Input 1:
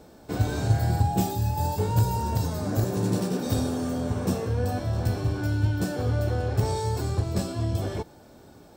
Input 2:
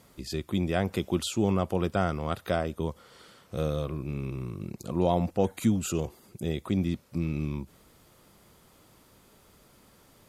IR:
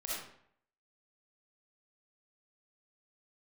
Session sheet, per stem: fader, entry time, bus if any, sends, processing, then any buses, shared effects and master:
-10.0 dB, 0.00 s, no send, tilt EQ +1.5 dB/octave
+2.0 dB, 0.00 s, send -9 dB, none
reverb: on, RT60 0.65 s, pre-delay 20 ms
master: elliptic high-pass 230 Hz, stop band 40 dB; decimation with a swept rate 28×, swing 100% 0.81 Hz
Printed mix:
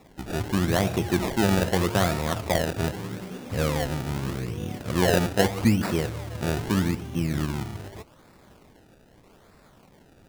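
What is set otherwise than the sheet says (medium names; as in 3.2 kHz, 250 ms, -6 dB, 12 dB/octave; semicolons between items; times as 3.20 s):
stem 1: missing tilt EQ +1.5 dB/octave; master: missing elliptic high-pass 230 Hz, stop band 40 dB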